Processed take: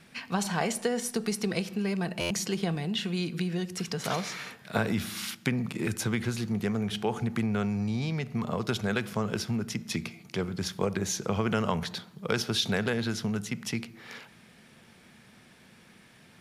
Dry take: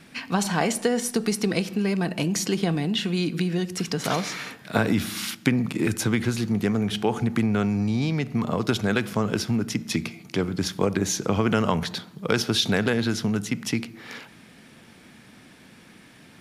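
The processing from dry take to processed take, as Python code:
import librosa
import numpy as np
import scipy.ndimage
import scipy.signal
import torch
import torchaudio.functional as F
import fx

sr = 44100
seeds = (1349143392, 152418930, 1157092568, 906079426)

y = fx.peak_eq(x, sr, hz=290.0, db=-11.5, octaves=0.22)
y = fx.buffer_glitch(y, sr, at_s=(2.2,), block=512, repeats=8)
y = y * 10.0 ** (-5.0 / 20.0)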